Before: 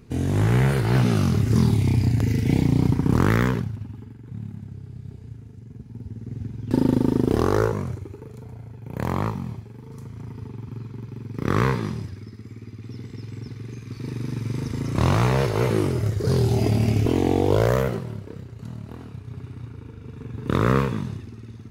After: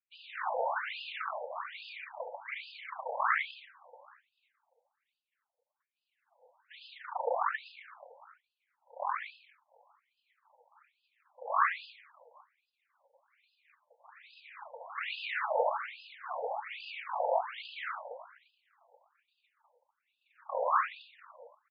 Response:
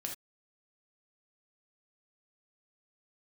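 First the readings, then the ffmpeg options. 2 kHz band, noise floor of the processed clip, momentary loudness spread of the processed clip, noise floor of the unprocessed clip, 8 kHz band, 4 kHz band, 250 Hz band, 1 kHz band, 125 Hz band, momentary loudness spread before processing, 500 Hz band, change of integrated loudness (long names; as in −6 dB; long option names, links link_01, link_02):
−4.0 dB, below −85 dBFS, 21 LU, −43 dBFS, below −40 dB, −8.5 dB, below −40 dB, −2.5 dB, below −40 dB, 20 LU, −12.5 dB, −13.0 dB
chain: -filter_complex "[0:a]aecho=1:1:70|80|691:0.376|0.126|0.15,acrossover=split=3400[link_01][link_02];[link_02]acompressor=threshold=-44dB:ratio=4:attack=1:release=60[link_03];[link_01][link_03]amix=inputs=2:normalize=0,acrossover=split=600|1700[link_04][link_05][link_06];[link_04]asoftclip=type=tanh:threshold=-17.5dB[link_07];[link_07][link_05][link_06]amix=inputs=3:normalize=0,highshelf=frequency=5700:gain=5.5,agate=range=-33dB:threshold=-25dB:ratio=3:detection=peak,aecho=1:1:4.6:0.51,afftfilt=real='hypot(re,im)*cos(2*PI*random(0))':imag='hypot(re,im)*sin(2*PI*random(1))':win_size=512:overlap=0.75,equalizer=frequency=7400:width_type=o:width=1.5:gain=-13,afftfilt=real='re*between(b*sr/1024,660*pow(3600/660,0.5+0.5*sin(2*PI*1.2*pts/sr))/1.41,660*pow(3600/660,0.5+0.5*sin(2*PI*1.2*pts/sr))*1.41)':imag='im*between(b*sr/1024,660*pow(3600/660,0.5+0.5*sin(2*PI*1.2*pts/sr))/1.41,660*pow(3600/660,0.5+0.5*sin(2*PI*1.2*pts/sr))*1.41)':win_size=1024:overlap=0.75,volume=7dB"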